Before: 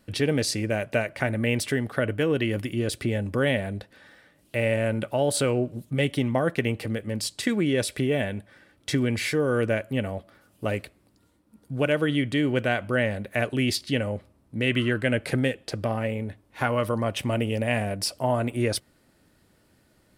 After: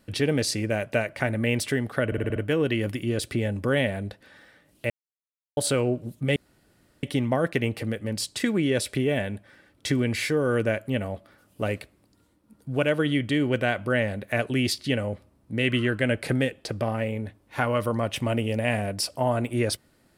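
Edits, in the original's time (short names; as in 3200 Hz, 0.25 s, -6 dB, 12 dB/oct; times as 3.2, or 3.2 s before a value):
2.06 stutter 0.06 s, 6 plays
4.6–5.27 mute
6.06 insert room tone 0.67 s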